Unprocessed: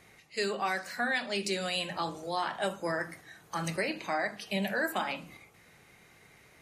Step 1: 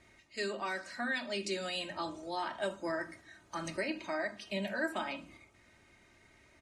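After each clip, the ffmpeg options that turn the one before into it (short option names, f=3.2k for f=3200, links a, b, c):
-af "lowpass=f=9.2k:w=0.5412,lowpass=f=9.2k:w=1.3066,lowshelf=f=240:g=6,aecho=1:1:3.2:0.63,volume=-6.5dB"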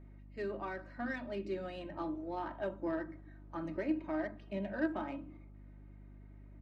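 -af "adynamicsmooth=sensitivity=1:basefreq=1.2k,equalizer=f=300:t=o:w=0.26:g=10.5,aeval=exprs='val(0)+0.00282*(sin(2*PI*50*n/s)+sin(2*PI*2*50*n/s)/2+sin(2*PI*3*50*n/s)/3+sin(2*PI*4*50*n/s)/4+sin(2*PI*5*50*n/s)/5)':c=same,volume=-1.5dB"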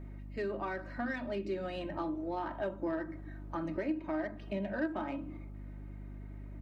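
-af "acompressor=threshold=-46dB:ratio=2,volume=8.5dB"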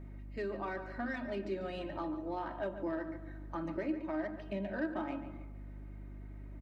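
-filter_complex "[0:a]asplit=2[a][b];[b]adelay=143,lowpass=f=3.6k:p=1,volume=-10.5dB,asplit=2[c][d];[d]adelay=143,lowpass=f=3.6k:p=1,volume=0.39,asplit=2[e][f];[f]adelay=143,lowpass=f=3.6k:p=1,volume=0.39,asplit=2[g][h];[h]adelay=143,lowpass=f=3.6k:p=1,volume=0.39[i];[a][c][e][g][i]amix=inputs=5:normalize=0,volume=-2dB"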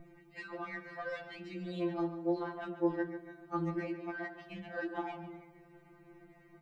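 -af "afftfilt=real='re*2.83*eq(mod(b,8),0)':imag='im*2.83*eq(mod(b,8),0)':win_size=2048:overlap=0.75,volume=4dB"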